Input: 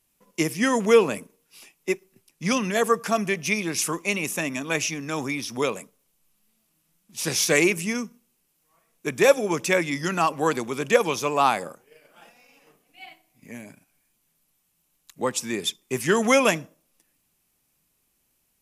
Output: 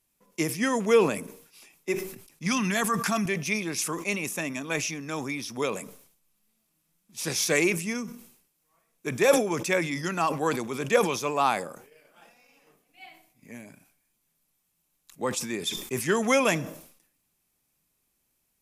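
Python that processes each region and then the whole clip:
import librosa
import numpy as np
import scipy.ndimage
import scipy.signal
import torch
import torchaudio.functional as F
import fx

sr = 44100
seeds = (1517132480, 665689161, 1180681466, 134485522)

y = fx.chain(x, sr, fx.peak_eq(hz=500.0, db=-14.0, octaves=0.65),
    fx.env_flatten(amount_pct=70), at=(2.46, 3.26))
y = fx.notch(y, sr, hz=2900.0, q=21.0)
y = fx.sustainer(y, sr, db_per_s=87.0)
y = F.gain(torch.from_numpy(y), -4.0).numpy()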